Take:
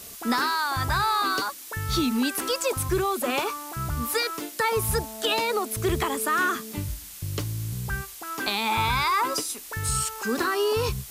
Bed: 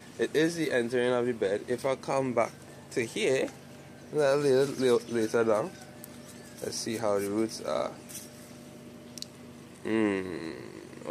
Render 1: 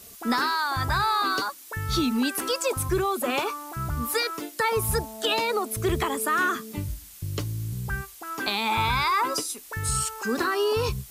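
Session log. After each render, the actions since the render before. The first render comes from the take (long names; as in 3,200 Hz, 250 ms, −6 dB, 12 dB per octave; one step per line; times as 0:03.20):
broadband denoise 6 dB, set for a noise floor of −42 dBFS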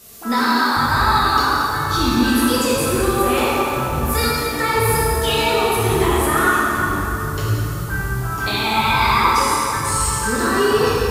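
dense smooth reverb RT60 3.8 s, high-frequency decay 0.6×, DRR −8 dB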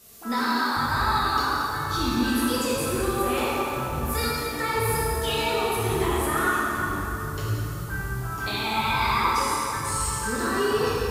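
level −7.5 dB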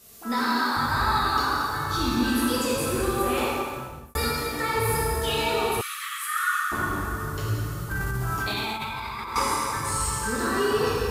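0:03.45–0:04.15: fade out
0:05.81–0:06.72: linear-phase brick-wall high-pass 1,100 Hz
0:07.91–0:09.36: compressor whose output falls as the input rises −30 dBFS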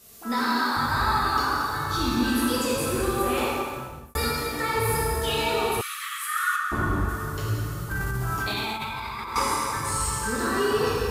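0:01.14–0:01.68: notch filter 3,900 Hz, Q 10
0:06.56–0:07.09: spectral tilt −2 dB per octave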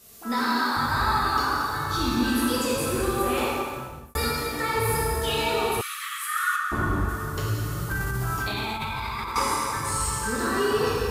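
0:07.37–0:09.32: multiband upward and downward compressor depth 70%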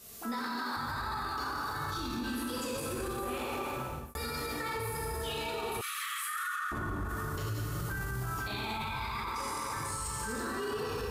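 downward compressor, threshold −25 dBFS, peak gain reduction 7 dB
brickwall limiter −27.5 dBFS, peak gain reduction 11 dB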